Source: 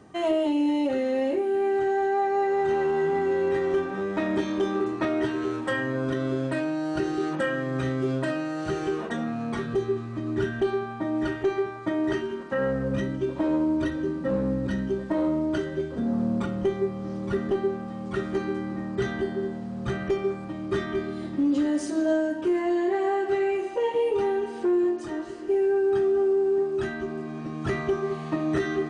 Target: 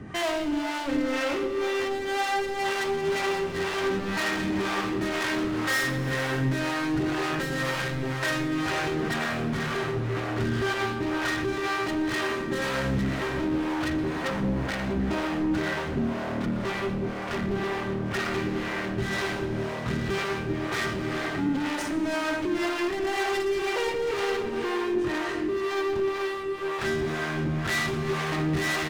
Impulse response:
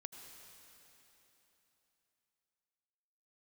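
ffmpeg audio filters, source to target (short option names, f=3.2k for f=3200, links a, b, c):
-filter_complex "[0:a]bass=f=250:g=9,treble=f=4k:g=-2,aecho=1:1:123:0.188,asplit=2[a][b];[b]alimiter=limit=-21.5dB:level=0:latency=1,volume=-1.5dB[c];[a][c]amix=inputs=2:normalize=0,equalizer=f=2k:w=0.87:g=13.5,asoftclip=type=hard:threshold=-26dB[d];[1:a]atrim=start_sample=2205[e];[d][e]afir=irnorm=-1:irlink=0,acrossover=split=450[f][g];[f]aeval=exprs='val(0)*(1-0.7/2+0.7/2*cos(2*PI*2*n/s))':c=same[h];[g]aeval=exprs='val(0)*(1-0.7/2-0.7/2*cos(2*PI*2*n/s))':c=same[i];[h][i]amix=inputs=2:normalize=0,volume=7.5dB"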